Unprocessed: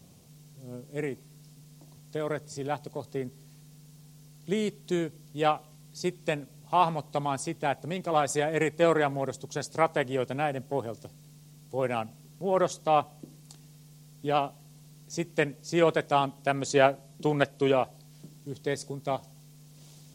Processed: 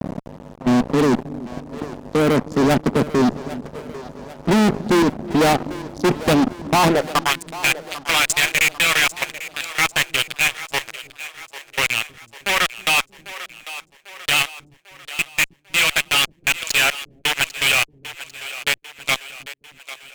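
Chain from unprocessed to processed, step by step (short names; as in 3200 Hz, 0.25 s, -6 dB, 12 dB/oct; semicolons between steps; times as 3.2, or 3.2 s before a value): Wiener smoothing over 41 samples; HPF 75 Hz 6 dB/oct; level quantiser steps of 15 dB; high-pass sweep 220 Hz -> 2500 Hz, 6.82–7.33; fuzz box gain 52 dB, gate -57 dBFS; on a send: split-band echo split 350 Hz, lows 0.314 s, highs 0.796 s, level -15 dB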